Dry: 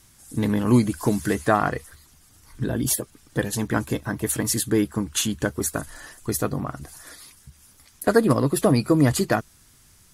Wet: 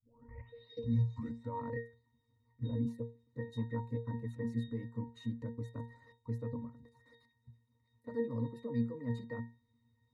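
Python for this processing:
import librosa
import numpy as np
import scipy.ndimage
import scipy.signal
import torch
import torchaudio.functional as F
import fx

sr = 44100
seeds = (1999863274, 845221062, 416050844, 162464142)

y = fx.tape_start_head(x, sr, length_s=1.72)
y = fx.hpss(y, sr, part='harmonic', gain_db=-10)
y = fx.level_steps(y, sr, step_db=16)
y = fx.notch(y, sr, hz=650.0, q=12.0)
y = fx.octave_resonator(y, sr, note='A#', decay_s=0.31)
y = y * librosa.db_to_amplitude(8.0)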